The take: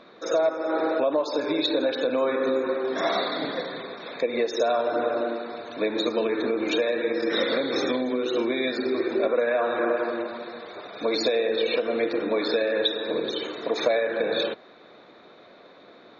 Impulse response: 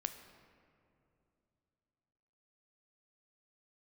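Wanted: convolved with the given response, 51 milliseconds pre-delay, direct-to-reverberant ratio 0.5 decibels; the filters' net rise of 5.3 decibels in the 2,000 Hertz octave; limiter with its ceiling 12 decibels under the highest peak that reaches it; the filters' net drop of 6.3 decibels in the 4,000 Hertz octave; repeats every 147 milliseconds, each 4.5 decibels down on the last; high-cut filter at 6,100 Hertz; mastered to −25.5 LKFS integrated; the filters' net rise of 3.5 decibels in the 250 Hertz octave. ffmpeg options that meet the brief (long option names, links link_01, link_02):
-filter_complex "[0:a]lowpass=6100,equalizer=frequency=250:width_type=o:gain=4.5,equalizer=frequency=2000:width_type=o:gain=8.5,equalizer=frequency=4000:width_type=o:gain=-8.5,alimiter=limit=-21dB:level=0:latency=1,aecho=1:1:147|294|441|588|735|882|1029|1176|1323:0.596|0.357|0.214|0.129|0.0772|0.0463|0.0278|0.0167|0.01,asplit=2[link_01][link_02];[1:a]atrim=start_sample=2205,adelay=51[link_03];[link_02][link_03]afir=irnorm=-1:irlink=0,volume=0dB[link_04];[link_01][link_04]amix=inputs=2:normalize=0,volume=-1dB"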